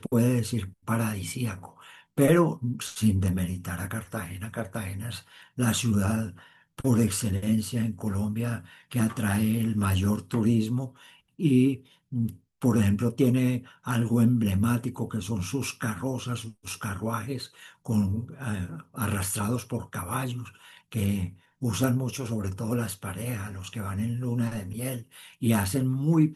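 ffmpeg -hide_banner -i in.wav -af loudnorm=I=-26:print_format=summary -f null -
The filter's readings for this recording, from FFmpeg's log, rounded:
Input Integrated:    -28.0 LUFS
Input True Peak:      -7.5 dBTP
Input LRA:             5.1 LU
Input Threshold:     -38.3 LUFS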